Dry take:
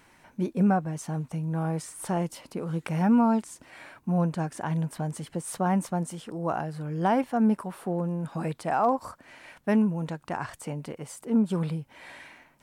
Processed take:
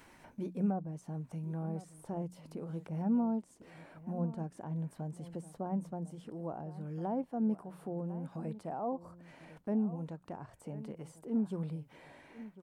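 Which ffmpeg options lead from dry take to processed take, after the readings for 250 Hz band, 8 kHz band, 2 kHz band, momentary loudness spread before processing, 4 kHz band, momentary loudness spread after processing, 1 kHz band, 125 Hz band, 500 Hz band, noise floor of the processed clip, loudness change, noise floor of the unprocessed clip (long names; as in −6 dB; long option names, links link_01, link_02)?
−9.0 dB, below −15 dB, −20.0 dB, 15 LU, below −15 dB, 14 LU, −14.5 dB, −9.5 dB, −10.5 dB, −62 dBFS, −10.0 dB, −61 dBFS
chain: -filter_complex "[0:a]bandreject=frequency=60:width_type=h:width=6,bandreject=frequency=120:width_type=h:width=6,bandreject=frequency=180:width_type=h:width=6,agate=range=-33dB:threshold=-50dB:ratio=3:detection=peak,acompressor=mode=upward:threshold=-31dB:ratio=2.5,asplit=2[link_01][link_02];[link_02]adelay=1050,volume=-16dB,highshelf=frequency=4000:gain=-23.6[link_03];[link_01][link_03]amix=inputs=2:normalize=0,acrossover=split=780[link_04][link_05];[link_05]acompressor=threshold=-51dB:ratio=6[link_06];[link_04][link_06]amix=inputs=2:normalize=0,volume=-9dB"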